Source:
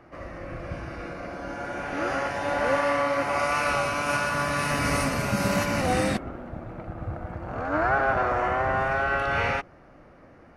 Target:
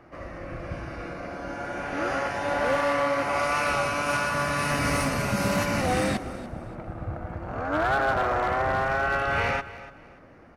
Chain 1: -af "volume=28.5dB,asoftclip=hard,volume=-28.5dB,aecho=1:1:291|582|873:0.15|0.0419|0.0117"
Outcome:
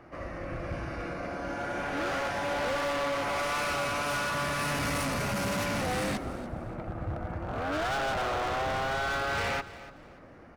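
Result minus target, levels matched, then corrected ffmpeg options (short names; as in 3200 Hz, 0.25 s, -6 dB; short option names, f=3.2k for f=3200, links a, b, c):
overloaded stage: distortion +14 dB
-af "volume=18.5dB,asoftclip=hard,volume=-18.5dB,aecho=1:1:291|582|873:0.15|0.0419|0.0117"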